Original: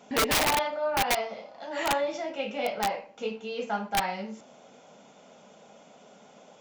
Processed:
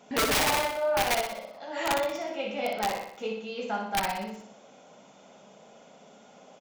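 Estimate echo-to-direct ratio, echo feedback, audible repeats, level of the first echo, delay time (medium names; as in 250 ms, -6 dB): -3.5 dB, 52%, 6, -5.0 dB, 61 ms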